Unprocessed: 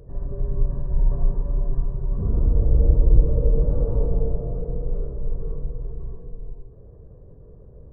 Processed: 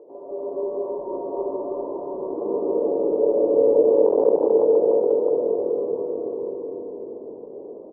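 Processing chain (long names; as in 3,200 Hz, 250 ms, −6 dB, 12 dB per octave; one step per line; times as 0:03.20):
in parallel at +1 dB: brickwall limiter −14.5 dBFS, peak gain reduction 11 dB
on the sum: convolution reverb RT60 3.7 s, pre-delay 105 ms, DRR −7 dB
0:04.06–0:05.43: bit-depth reduction 6 bits, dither none
elliptic band-pass filter 320–940 Hz, stop band 60 dB
on a send: echo with shifted repeats 493 ms, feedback 50%, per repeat −45 Hz, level −13 dB
on the sum: level that may rise only so fast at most 500 dB per second
level +1.5 dB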